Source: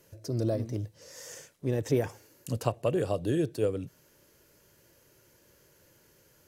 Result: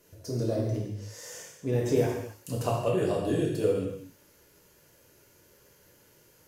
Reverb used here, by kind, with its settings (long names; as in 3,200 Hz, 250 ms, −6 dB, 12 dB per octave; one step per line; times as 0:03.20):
reverb whose tail is shaped and stops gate 310 ms falling, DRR −3.5 dB
level −2.5 dB